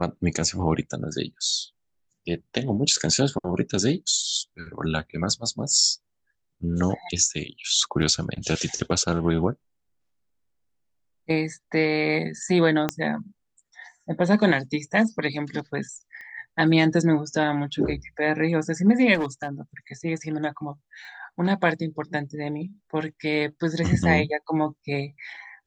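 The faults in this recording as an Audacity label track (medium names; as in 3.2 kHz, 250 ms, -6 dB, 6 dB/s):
8.020000	8.030000	dropout 7.1 ms
12.890000	12.890000	pop -9 dBFS
16.210000	16.210000	pop -29 dBFS
19.140000	19.480000	clipped -21.5 dBFS
21.050000	21.050000	pop -34 dBFS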